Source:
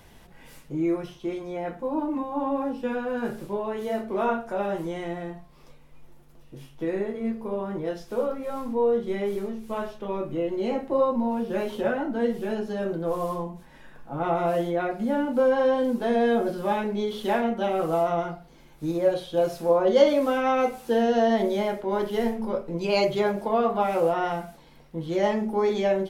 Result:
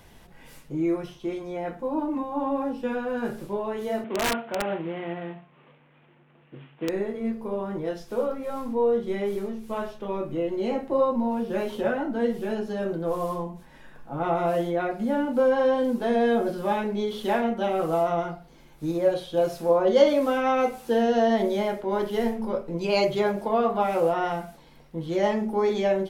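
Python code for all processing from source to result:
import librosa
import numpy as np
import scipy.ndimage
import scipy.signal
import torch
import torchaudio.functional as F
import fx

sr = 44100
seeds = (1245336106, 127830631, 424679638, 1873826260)

y = fx.chain(x, sr, fx.cvsd(bps=16000),
    fx.highpass(hz=110.0, slope=24),
    fx.overflow_wrap(gain_db=18.5), at=(4.04, 6.89))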